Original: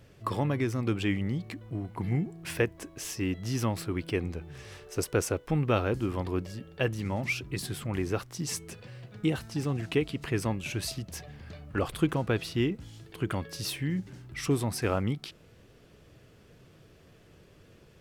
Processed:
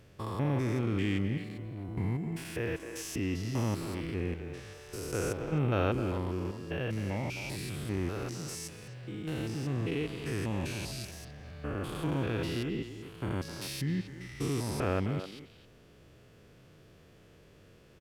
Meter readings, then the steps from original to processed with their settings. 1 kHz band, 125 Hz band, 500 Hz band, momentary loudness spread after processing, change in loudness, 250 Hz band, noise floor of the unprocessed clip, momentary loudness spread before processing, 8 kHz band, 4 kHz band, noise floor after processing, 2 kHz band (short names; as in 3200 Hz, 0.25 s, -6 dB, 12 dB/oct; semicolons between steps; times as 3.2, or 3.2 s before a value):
-3.5 dB, -1.5 dB, -3.5 dB, 11 LU, -3.0 dB, -2.5 dB, -57 dBFS, 11 LU, -4.5 dB, -4.0 dB, -58 dBFS, -4.0 dB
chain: stepped spectrum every 0.2 s; speakerphone echo 0.26 s, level -8 dB